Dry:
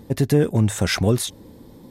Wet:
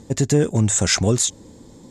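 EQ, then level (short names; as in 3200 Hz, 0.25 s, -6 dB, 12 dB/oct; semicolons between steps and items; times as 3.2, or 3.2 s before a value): synth low-pass 7200 Hz, resonance Q 6.7; 0.0 dB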